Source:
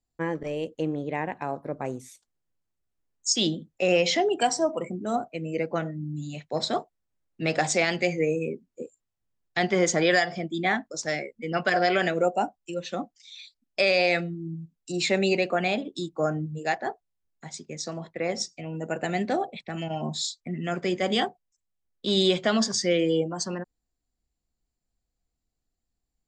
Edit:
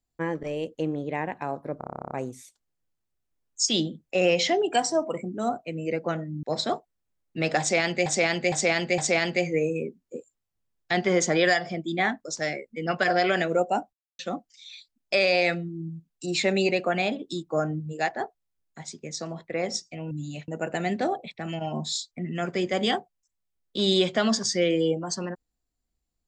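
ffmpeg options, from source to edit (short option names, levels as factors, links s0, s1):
-filter_complex "[0:a]asplit=20[s0][s1][s2][s3][s4][s5][s6][s7][s8][s9][s10][s11][s12][s13][s14][s15][s16][s17][s18][s19];[s0]atrim=end=1.812[s20];[s1]atrim=start=1.778:end=1.812[s21];[s2]atrim=start=1.778:end=1.812[s22];[s3]atrim=start=1.778:end=1.812[s23];[s4]atrim=start=1.778:end=1.812[s24];[s5]atrim=start=1.778:end=1.812[s25];[s6]atrim=start=1.778:end=1.812[s26];[s7]atrim=start=1.778:end=1.812[s27];[s8]atrim=start=1.778:end=1.812[s28];[s9]atrim=start=1.778:end=1.812[s29];[s10]atrim=start=1.778:end=1.812[s30];[s11]atrim=start=1.778:end=6.102[s31];[s12]atrim=start=6.468:end=8.102[s32];[s13]atrim=start=7.638:end=8.102[s33];[s14]atrim=start=7.638:end=8.102[s34];[s15]atrim=start=7.638:end=12.59,asetpts=PTS-STARTPTS,afade=t=out:st=4.948:d=0.004:c=hsin[s35];[s16]atrim=start=12.59:end=12.85,asetpts=PTS-STARTPTS,volume=0[s36];[s17]atrim=start=12.85:end=18.772,asetpts=PTS-STARTPTS,afade=t=in:d=0.004:c=hsin[s37];[s18]atrim=start=6.098:end=6.472[s38];[s19]atrim=start=18.768[s39];[s20][s21]acrossfade=d=0.004:c1=hsin:c2=hsin[s40];[s40][s22]acrossfade=d=0.004:c1=hsin:c2=hsin[s41];[s41][s23]acrossfade=d=0.004:c1=hsin:c2=hsin[s42];[s42][s24]acrossfade=d=0.004:c1=hsin:c2=hsin[s43];[s43][s25]acrossfade=d=0.004:c1=hsin:c2=hsin[s44];[s44][s26]acrossfade=d=0.004:c1=hsin:c2=hsin[s45];[s45][s27]acrossfade=d=0.004:c1=hsin:c2=hsin[s46];[s46][s28]acrossfade=d=0.004:c1=hsin:c2=hsin[s47];[s47][s29]acrossfade=d=0.004:c1=hsin:c2=hsin[s48];[s48][s30]acrossfade=d=0.004:c1=hsin:c2=hsin[s49];[s49][s31]acrossfade=d=0.004:c1=hsin:c2=hsin[s50];[s50][s32]acrossfade=d=0.004:c1=hsin:c2=hsin[s51];[s51][s33]acrossfade=d=0.004:c1=hsin:c2=hsin[s52];[s52][s34]acrossfade=d=0.004:c1=hsin:c2=hsin[s53];[s35][s36][s37]concat=n=3:v=0:a=1[s54];[s53][s54]acrossfade=d=0.004:c1=hsin:c2=hsin[s55];[s55][s38]acrossfade=d=0.004:c1=hsin:c2=hsin[s56];[s56][s39]acrossfade=d=0.004:c1=hsin:c2=hsin"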